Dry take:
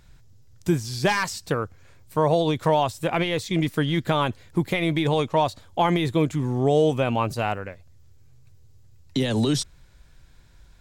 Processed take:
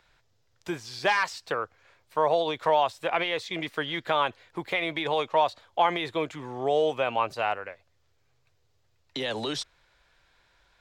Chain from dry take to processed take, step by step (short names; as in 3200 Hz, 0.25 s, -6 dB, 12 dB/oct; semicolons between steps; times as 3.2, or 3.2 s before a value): three-band isolator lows -19 dB, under 450 Hz, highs -14 dB, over 4700 Hz